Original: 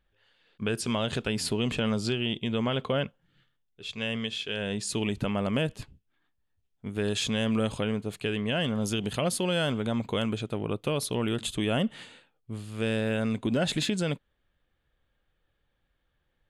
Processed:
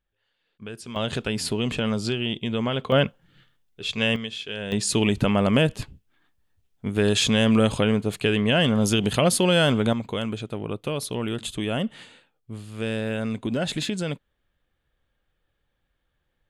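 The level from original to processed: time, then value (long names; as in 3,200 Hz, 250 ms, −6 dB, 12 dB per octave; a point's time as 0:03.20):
−8 dB
from 0:00.96 +2.5 dB
from 0:02.92 +9 dB
from 0:04.16 0 dB
from 0:04.72 +8 dB
from 0:09.93 +0.5 dB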